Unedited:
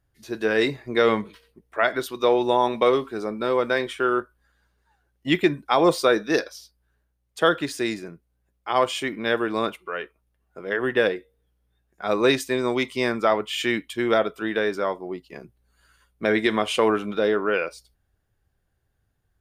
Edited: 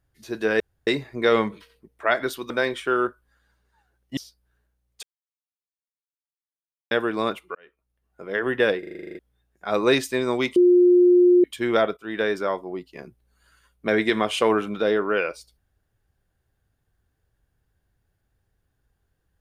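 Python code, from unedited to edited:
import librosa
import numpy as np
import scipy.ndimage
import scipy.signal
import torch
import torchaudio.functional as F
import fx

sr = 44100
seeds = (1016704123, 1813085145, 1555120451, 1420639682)

y = fx.edit(x, sr, fx.insert_room_tone(at_s=0.6, length_s=0.27),
    fx.cut(start_s=2.23, length_s=1.4),
    fx.cut(start_s=5.3, length_s=1.24),
    fx.silence(start_s=7.4, length_s=1.88),
    fx.fade_in_span(start_s=9.92, length_s=0.74),
    fx.stutter_over(start_s=11.16, slice_s=0.04, count=10),
    fx.bleep(start_s=12.93, length_s=0.88, hz=356.0, db=-11.5),
    fx.fade_in_from(start_s=14.34, length_s=0.25, floor_db=-17.5), tone=tone)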